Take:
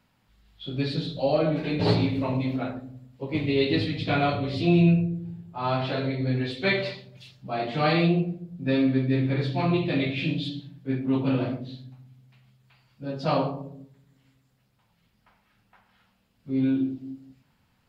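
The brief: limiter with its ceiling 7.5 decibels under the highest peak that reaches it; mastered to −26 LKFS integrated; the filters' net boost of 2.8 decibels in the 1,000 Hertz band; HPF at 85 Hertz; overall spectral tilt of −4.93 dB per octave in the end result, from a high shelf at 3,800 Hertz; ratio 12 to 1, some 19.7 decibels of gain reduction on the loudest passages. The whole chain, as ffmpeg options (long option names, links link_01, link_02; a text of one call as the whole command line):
ffmpeg -i in.wav -af "highpass=85,equalizer=frequency=1000:width_type=o:gain=3.5,highshelf=frequency=3800:gain=7.5,acompressor=threshold=-36dB:ratio=12,volume=16dB,alimiter=limit=-16.5dB:level=0:latency=1" out.wav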